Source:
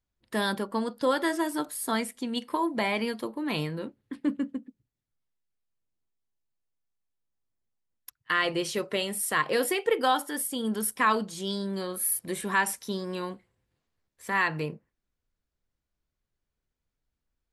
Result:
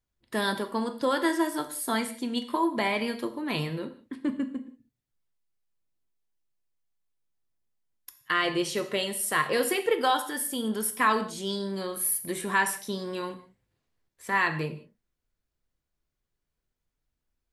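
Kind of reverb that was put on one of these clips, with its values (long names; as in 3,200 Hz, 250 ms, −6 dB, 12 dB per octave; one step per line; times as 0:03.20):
reverb whose tail is shaped and stops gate 210 ms falling, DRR 8 dB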